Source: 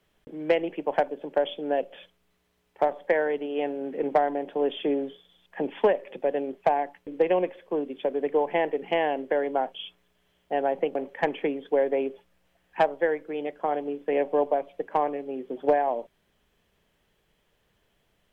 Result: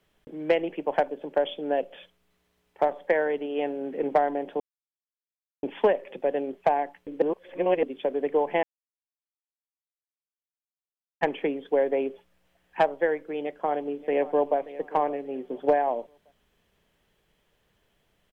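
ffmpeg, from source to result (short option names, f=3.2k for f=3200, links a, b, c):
-filter_complex "[0:a]asplit=2[a][b];[b]afade=t=in:st=13.41:d=0.01,afade=t=out:st=14.57:d=0.01,aecho=0:1:580|1160|1740:0.149624|0.0448871|0.0134661[c];[a][c]amix=inputs=2:normalize=0,asplit=7[d][e][f][g][h][i][j];[d]atrim=end=4.6,asetpts=PTS-STARTPTS,afade=t=out:st=4.596:d=0.004:c=hsin[k];[e]atrim=start=4.6:end=5.63,asetpts=PTS-STARTPTS,volume=0[l];[f]atrim=start=5.63:end=7.222,asetpts=PTS-STARTPTS,afade=t=in:d=0.004:c=hsin[m];[g]atrim=start=7.218:end=7.832,asetpts=PTS-STARTPTS,areverse[n];[h]atrim=start=7.828:end=8.63,asetpts=PTS-STARTPTS,afade=t=out:st=0.798:d=0.004:c=hsin[o];[i]atrim=start=8.63:end=11.21,asetpts=PTS-STARTPTS,volume=0[p];[j]atrim=start=11.21,asetpts=PTS-STARTPTS,afade=t=in:d=0.004:c=hsin[q];[k][l][m]concat=n=3:v=0:a=1[r];[r][n]acrossfade=d=0.004:c1=hsin:c2=hsin[s];[o][p][q]concat=n=3:v=0:a=1[t];[s][t]acrossfade=d=0.004:c1=hsin:c2=hsin"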